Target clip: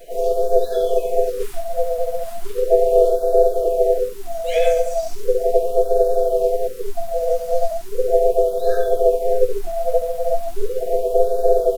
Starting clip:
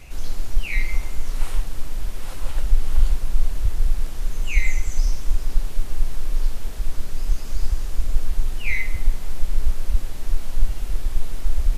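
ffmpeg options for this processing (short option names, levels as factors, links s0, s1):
-filter_complex "[0:a]afftfilt=real='real(if(between(b,1,1008),(2*floor((b-1)/24)+1)*24-b,b),0)':imag='imag(if(between(b,1,1008),(2*floor((b-1)/24)+1)*24-b,b),0)*if(between(b,1,1008),-1,1)':win_size=2048:overlap=0.75,aemphasis=mode=production:type=50kf,asplit=2[s0][s1];[s1]adynamicsmooth=sensitivity=7.5:basefreq=1600,volume=0.398[s2];[s0][s2]amix=inputs=2:normalize=0,asplit=4[s3][s4][s5][s6];[s4]asetrate=35002,aresample=44100,atempo=1.25992,volume=0.355[s7];[s5]asetrate=37084,aresample=44100,atempo=1.18921,volume=0.224[s8];[s6]asetrate=58866,aresample=44100,atempo=0.749154,volume=0.708[s9];[s3][s7][s8][s9]amix=inputs=4:normalize=0,asplit=2[s10][s11];[s11]aecho=0:1:18|64:0.335|0.133[s12];[s10][s12]amix=inputs=2:normalize=0,afftfilt=real='re*(1-between(b*sr/1024,310*pow(2500/310,0.5+0.5*sin(2*PI*0.37*pts/sr))/1.41,310*pow(2500/310,0.5+0.5*sin(2*PI*0.37*pts/sr))*1.41))':imag='im*(1-between(b*sr/1024,310*pow(2500/310,0.5+0.5*sin(2*PI*0.37*pts/sr))/1.41,310*pow(2500/310,0.5+0.5*sin(2*PI*0.37*pts/sr))*1.41))':win_size=1024:overlap=0.75,volume=0.316"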